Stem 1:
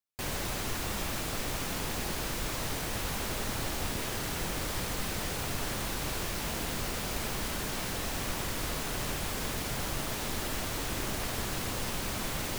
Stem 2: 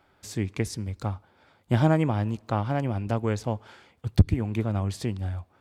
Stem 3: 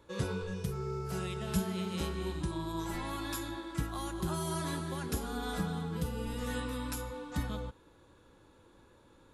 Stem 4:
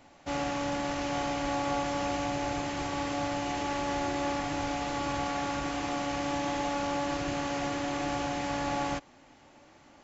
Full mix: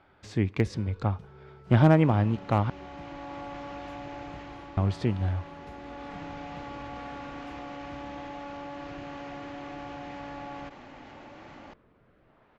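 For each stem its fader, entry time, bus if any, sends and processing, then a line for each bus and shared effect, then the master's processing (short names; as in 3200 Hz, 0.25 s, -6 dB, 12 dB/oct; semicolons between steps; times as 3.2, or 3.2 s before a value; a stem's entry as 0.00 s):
-19.0 dB, 2.30 s, no send, LPF 1200 Hz 12 dB/oct; tilt +2.5 dB/oct; rotary speaker horn 0.65 Hz
+2.5 dB, 0.00 s, muted 2.7–4.77, no send, dry
-13.5 dB, 0.55 s, no send, dry
-10.0 dB, 1.70 s, no send, fast leveller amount 70%; auto duck -6 dB, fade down 0.55 s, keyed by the second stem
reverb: off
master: LPF 3200 Hz 12 dB/oct; overloaded stage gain 11.5 dB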